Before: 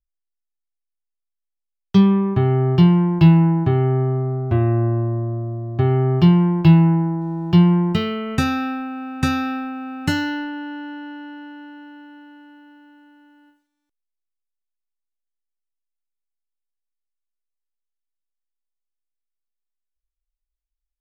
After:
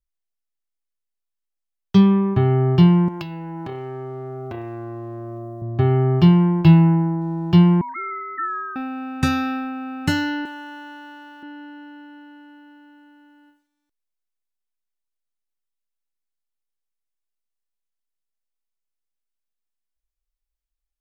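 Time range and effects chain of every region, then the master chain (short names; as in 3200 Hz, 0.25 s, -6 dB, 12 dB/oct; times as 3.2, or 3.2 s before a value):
3.08–5.62 compressor 10:1, threshold -21 dBFS + transient shaper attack +1 dB, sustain +9 dB + tone controls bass -12 dB, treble +7 dB
7.81–8.76 sine-wave speech + HPF 650 Hz 24 dB/oct
10.45–11.43 G.711 law mismatch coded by A + HPF 440 Hz
whole clip: dry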